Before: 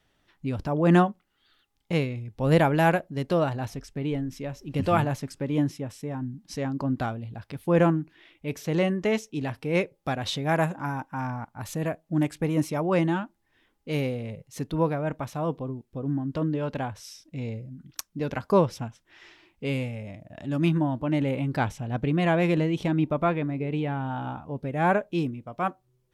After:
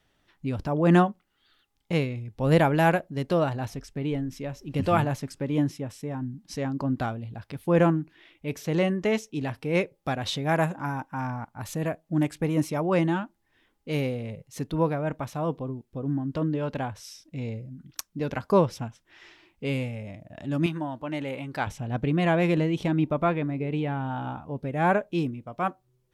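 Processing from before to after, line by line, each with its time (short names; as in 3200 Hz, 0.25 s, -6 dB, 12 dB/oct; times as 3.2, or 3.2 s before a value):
20.66–21.67 low shelf 360 Hz -12 dB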